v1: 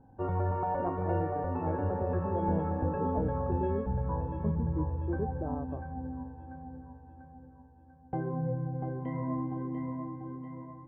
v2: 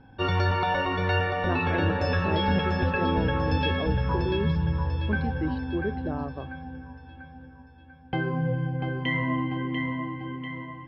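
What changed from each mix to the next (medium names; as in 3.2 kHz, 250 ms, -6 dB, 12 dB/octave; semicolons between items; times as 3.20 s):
speech: entry +0.65 s; master: remove four-pole ladder low-pass 1.1 kHz, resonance 25%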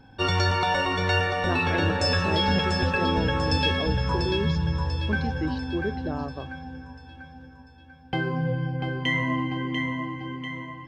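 master: remove distance through air 290 m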